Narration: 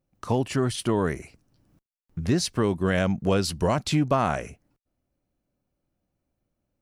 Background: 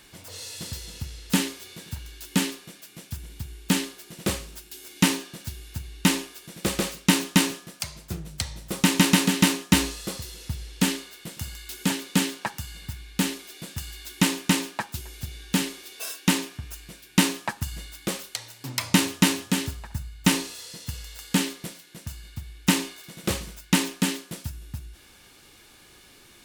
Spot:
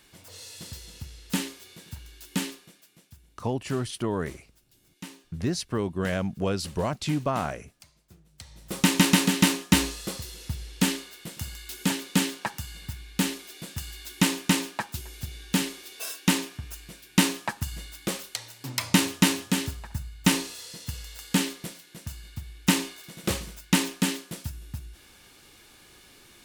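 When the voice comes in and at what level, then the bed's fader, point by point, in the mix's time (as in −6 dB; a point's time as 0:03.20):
3.15 s, −4.5 dB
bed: 0:02.51 −5.5 dB
0:03.43 −21.5 dB
0:08.28 −21.5 dB
0:08.77 −1 dB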